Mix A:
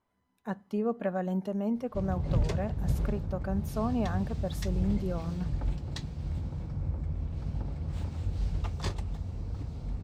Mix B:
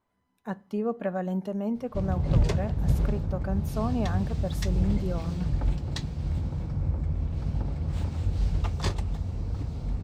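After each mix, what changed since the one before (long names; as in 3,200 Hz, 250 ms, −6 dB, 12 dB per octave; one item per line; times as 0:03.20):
speech: send +9.0 dB
background +5.0 dB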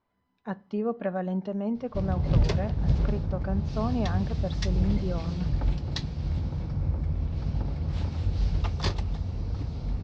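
background: remove high-frequency loss of the air 110 metres
master: add Butterworth low-pass 5,400 Hz 36 dB per octave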